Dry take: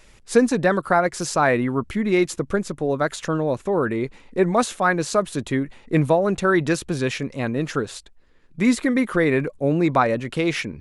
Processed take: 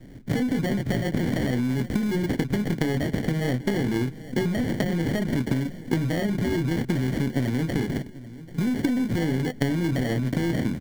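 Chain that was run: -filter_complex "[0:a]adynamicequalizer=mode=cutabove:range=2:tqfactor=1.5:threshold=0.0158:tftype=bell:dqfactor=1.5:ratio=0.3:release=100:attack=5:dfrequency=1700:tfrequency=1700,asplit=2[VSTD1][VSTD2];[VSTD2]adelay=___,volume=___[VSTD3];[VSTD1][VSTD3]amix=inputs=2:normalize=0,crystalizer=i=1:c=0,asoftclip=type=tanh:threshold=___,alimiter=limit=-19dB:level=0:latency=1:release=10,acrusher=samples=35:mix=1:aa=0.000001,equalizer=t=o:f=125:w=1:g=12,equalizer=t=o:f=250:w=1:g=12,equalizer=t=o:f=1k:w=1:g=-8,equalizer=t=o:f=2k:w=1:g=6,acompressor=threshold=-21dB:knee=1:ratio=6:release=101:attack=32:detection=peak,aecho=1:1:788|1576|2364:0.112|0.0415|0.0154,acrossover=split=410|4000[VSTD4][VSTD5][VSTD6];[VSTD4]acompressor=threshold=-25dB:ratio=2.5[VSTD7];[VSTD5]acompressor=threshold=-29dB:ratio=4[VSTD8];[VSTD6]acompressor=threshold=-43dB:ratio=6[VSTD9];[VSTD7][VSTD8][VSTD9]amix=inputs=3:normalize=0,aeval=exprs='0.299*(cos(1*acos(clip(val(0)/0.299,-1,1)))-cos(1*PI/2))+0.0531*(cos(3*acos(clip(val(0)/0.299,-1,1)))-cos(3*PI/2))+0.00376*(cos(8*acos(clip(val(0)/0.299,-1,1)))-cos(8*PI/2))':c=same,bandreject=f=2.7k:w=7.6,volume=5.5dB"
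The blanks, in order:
24, -5dB, -15dB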